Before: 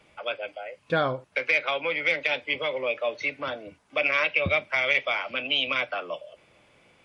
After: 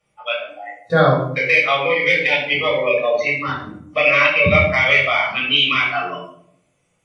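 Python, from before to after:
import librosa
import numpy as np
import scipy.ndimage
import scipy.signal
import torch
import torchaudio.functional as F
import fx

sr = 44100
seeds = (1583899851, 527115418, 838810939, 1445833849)

y = fx.noise_reduce_blind(x, sr, reduce_db=20)
y = fx.room_shoebox(y, sr, seeds[0], volume_m3=990.0, walls='furnished', distance_m=6.3)
y = y * librosa.db_to_amplitude(3.0)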